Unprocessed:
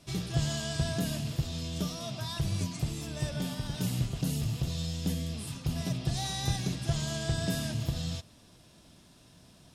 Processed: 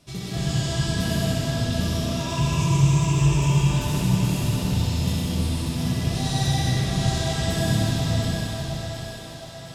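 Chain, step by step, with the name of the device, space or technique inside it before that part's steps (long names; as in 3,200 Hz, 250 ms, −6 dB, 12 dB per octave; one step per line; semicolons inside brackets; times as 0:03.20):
0:02.07–0:03.54: EQ curve with evenly spaced ripples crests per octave 0.72, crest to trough 16 dB
tunnel (flutter between parallel walls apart 11 metres, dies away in 0.58 s; convolution reverb RT60 3.9 s, pre-delay 84 ms, DRR −6.5 dB)
echo with a time of its own for lows and highs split 350 Hz, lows 100 ms, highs 719 ms, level −6 dB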